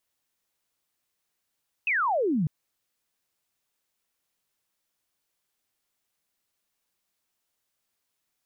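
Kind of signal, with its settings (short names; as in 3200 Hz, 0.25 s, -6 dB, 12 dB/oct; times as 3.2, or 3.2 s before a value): laser zap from 2700 Hz, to 140 Hz, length 0.60 s sine, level -22 dB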